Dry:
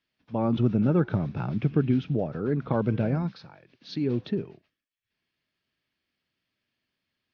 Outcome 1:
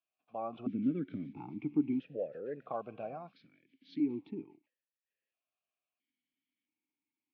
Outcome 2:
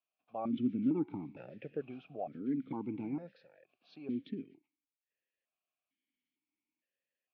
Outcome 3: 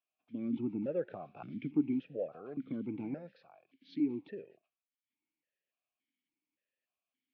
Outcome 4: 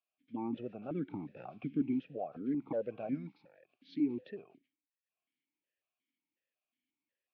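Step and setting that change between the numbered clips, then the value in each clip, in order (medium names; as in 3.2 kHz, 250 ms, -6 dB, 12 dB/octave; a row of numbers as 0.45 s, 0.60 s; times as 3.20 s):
stepped vowel filter, rate: 1.5 Hz, 2.2 Hz, 3.5 Hz, 5.5 Hz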